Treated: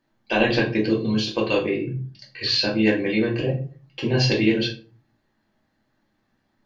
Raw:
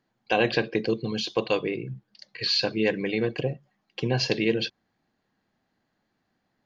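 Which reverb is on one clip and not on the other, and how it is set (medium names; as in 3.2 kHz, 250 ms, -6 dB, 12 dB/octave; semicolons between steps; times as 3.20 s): simulated room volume 210 m³, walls furnished, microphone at 2.6 m; trim -1 dB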